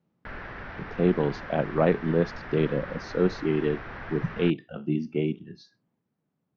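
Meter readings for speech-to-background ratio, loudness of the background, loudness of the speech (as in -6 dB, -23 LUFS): 12.5 dB, -40.0 LUFS, -27.5 LUFS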